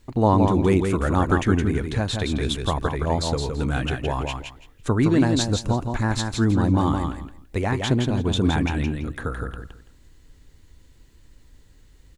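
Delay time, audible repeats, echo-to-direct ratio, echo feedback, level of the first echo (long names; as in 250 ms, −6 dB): 167 ms, 3, −5.0 dB, 20%, −5.0 dB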